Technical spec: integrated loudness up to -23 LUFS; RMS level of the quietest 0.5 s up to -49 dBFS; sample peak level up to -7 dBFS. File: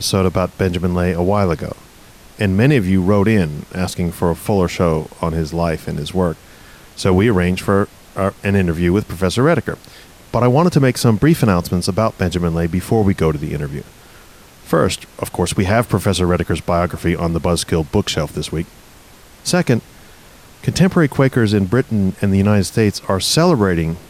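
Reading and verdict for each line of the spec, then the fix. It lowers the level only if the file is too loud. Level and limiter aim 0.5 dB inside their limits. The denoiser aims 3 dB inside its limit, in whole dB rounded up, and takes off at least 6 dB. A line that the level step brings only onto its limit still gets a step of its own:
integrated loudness -17.0 LUFS: fail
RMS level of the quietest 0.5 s -43 dBFS: fail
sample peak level -3.0 dBFS: fail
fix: trim -6.5 dB

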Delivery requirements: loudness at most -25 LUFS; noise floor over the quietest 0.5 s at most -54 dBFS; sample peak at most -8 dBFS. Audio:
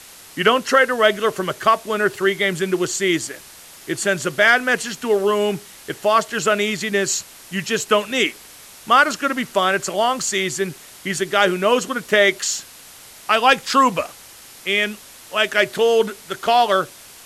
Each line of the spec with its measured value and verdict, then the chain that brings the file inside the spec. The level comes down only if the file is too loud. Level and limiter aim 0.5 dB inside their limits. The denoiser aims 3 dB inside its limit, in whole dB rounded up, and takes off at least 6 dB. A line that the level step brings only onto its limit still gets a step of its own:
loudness -19.0 LUFS: fail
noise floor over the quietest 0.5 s -43 dBFS: fail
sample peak -2.5 dBFS: fail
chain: noise reduction 8 dB, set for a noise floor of -43 dBFS; trim -6.5 dB

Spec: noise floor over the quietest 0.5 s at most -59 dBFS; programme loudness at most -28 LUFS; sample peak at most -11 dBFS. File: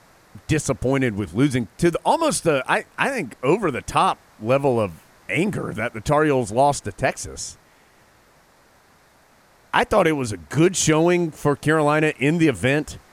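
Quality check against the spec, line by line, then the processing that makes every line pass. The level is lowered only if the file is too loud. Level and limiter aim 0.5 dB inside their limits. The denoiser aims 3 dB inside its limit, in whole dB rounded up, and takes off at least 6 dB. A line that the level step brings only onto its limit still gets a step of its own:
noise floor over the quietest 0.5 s -55 dBFS: fail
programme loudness -21.0 LUFS: fail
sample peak -3.5 dBFS: fail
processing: trim -7.5 dB; peak limiter -11.5 dBFS

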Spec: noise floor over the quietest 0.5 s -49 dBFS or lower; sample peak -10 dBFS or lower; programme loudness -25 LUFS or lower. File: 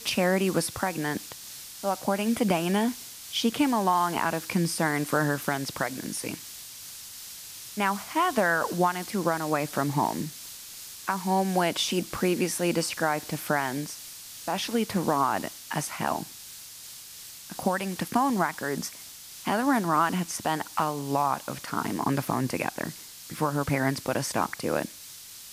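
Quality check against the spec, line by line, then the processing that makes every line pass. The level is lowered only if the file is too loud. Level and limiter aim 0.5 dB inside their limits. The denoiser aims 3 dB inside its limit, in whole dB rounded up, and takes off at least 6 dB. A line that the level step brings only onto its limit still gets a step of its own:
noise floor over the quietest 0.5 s -45 dBFS: fail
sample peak -12.0 dBFS: pass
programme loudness -27.5 LUFS: pass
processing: noise reduction 7 dB, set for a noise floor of -45 dBFS

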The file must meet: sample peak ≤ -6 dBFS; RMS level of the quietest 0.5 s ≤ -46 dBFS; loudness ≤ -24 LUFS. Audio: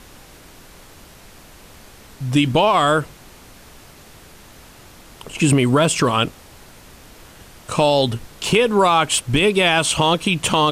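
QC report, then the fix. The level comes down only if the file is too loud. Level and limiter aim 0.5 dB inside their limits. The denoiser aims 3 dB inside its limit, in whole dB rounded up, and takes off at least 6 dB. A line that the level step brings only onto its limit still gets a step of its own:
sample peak -5.5 dBFS: fail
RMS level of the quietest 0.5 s -44 dBFS: fail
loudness -17.0 LUFS: fail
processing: trim -7.5 dB

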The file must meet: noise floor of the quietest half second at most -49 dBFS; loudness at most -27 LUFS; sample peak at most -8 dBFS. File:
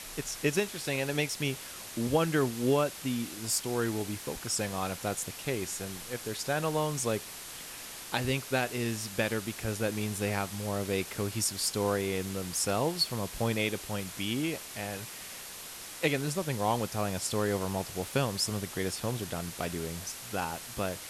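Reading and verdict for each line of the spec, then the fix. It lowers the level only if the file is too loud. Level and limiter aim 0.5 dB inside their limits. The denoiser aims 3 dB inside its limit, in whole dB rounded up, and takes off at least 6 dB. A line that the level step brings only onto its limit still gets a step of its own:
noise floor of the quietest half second -44 dBFS: fail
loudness -32.0 LUFS: pass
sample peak -13.0 dBFS: pass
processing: noise reduction 8 dB, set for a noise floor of -44 dBFS

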